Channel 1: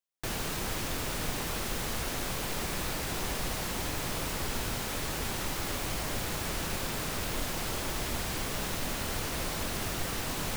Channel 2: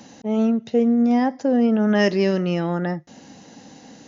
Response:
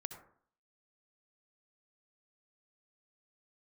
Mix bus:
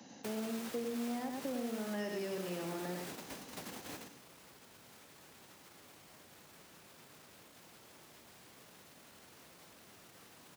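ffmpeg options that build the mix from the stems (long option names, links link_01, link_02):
-filter_complex "[0:a]alimiter=level_in=4dB:limit=-24dB:level=0:latency=1:release=27,volume=-4dB,volume=-2dB,asplit=2[link_01][link_02];[link_02]volume=-18dB[link_03];[1:a]volume=-10.5dB,asplit=3[link_04][link_05][link_06];[link_05]volume=-4dB[link_07];[link_06]apad=whole_len=466026[link_08];[link_01][link_08]sidechaingate=range=-33dB:threshold=-53dB:ratio=16:detection=peak[link_09];[link_03][link_07]amix=inputs=2:normalize=0,aecho=0:1:101:1[link_10];[link_09][link_04][link_10]amix=inputs=3:normalize=0,highpass=140,acrossover=split=210|520[link_11][link_12][link_13];[link_11]acompressor=threshold=-56dB:ratio=4[link_14];[link_12]acompressor=threshold=-42dB:ratio=4[link_15];[link_13]acompressor=threshold=-45dB:ratio=4[link_16];[link_14][link_15][link_16]amix=inputs=3:normalize=0"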